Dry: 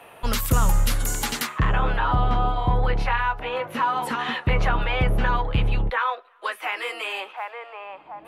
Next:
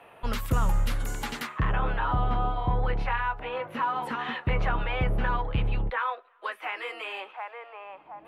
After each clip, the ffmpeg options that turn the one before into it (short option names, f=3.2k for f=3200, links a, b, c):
-af "bass=f=250:g=0,treble=f=4k:g=-10,volume=-5dB"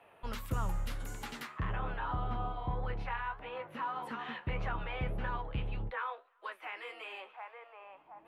-af "flanger=delay=8.2:depth=7.1:regen=67:speed=1.7:shape=triangular,volume=-5dB"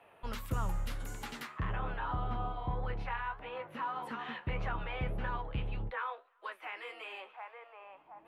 -af anull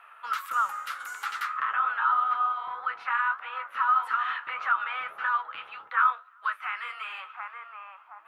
-af "highpass=f=1.3k:t=q:w=6.7,volume=4.5dB"